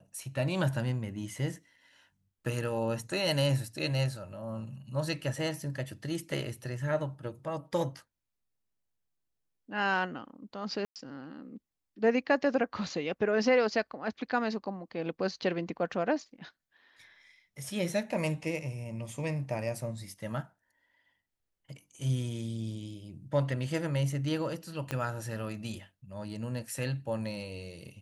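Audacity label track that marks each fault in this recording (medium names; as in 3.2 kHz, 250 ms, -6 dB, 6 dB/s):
10.850000	10.960000	dropout 108 ms
24.910000	24.910000	pop -18 dBFS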